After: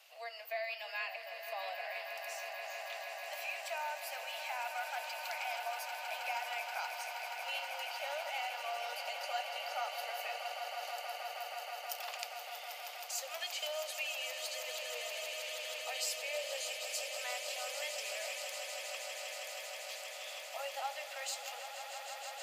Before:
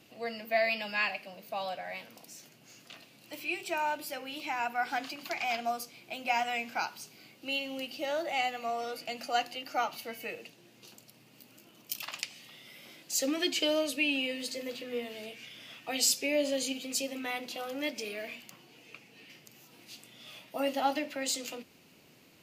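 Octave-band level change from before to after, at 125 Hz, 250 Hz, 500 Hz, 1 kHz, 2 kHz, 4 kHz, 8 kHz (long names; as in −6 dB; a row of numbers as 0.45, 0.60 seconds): below −40 dB, below −40 dB, −7.0 dB, −5.0 dB, −4.5 dB, −4.0 dB, −5.5 dB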